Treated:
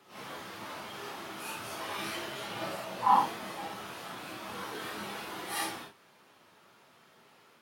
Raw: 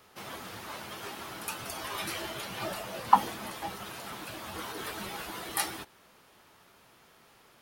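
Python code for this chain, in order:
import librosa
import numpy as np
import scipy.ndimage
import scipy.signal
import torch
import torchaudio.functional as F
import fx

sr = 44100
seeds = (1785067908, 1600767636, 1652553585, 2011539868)

y = fx.phase_scramble(x, sr, seeds[0], window_ms=200)
y = scipy.signal.sosfilt(scipy.signal.butter(2, 130.0, 'highpass', fs=sr, output='sos'), y)
y = fx.high_shelf(y, sr, hz=6600.0, db=-7.0)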